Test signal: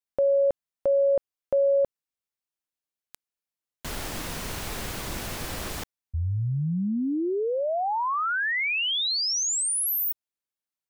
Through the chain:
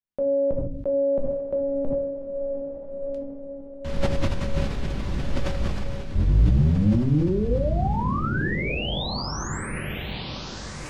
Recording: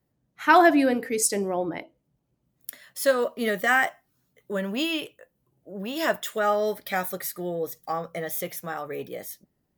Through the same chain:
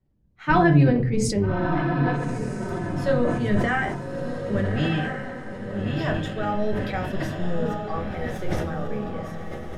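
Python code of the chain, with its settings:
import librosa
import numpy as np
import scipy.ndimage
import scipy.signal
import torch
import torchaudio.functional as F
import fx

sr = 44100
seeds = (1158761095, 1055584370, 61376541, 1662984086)

y = fx.octave_divider(x, sr, octaves=1, level_db=2.0)
y = scipy.signal.sosfilt(scipy.signal.butter(2, 4500.0, 'lowpass', fs=sr, output='sos'), y)
y = fx.low_shelf(y, sr, hz=320.0, db=9.0)
y = fx.echo_diffused(y, sr, ms=1274, feedback_pct=50, wet_db=-6)
y = fx.room_shoebox(y, sr, seeds[0], volume_m3=140.0, walls='furnished', distance_m=1.1)
y = fx.sustainer(y, sr, db_per_s=42.0)
y = F.gain(torch.from_numpy(y), -7.0).numpy()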